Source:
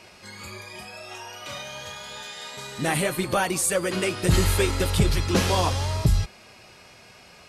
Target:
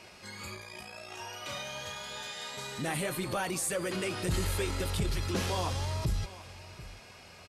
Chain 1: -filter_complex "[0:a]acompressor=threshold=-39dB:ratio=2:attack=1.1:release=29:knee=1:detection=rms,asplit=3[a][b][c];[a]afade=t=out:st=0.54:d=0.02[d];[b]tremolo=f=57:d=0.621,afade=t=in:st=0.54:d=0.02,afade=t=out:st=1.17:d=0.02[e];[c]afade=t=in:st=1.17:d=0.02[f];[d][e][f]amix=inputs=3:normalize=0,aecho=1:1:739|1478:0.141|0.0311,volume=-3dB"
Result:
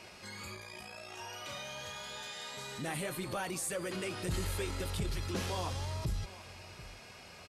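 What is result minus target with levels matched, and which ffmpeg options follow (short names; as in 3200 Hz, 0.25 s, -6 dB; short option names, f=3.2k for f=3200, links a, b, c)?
compressor: peak gain reduction +4.5 dB
-filter_complex "[0:a]acompressor=threshold=-30dB:ratio=2:attack=1.1:release=29:knee=1:detection=rms,asplit=3[a][b][c];[a]afade=t=out:st=0.54:d=0.02[d];[b]tremolo=f=57:d=0.621,afade=t=in:st=0.54:d=0.02,afade=t=out:st=1.17:d=0.02[e];[c]afade=t=in:st=1.17:d=0.02[f];[d][e][f]amix=inputs=3:normalize=0,aecho=1:1:739|1478:0.141|0.0311,volume=-3dB"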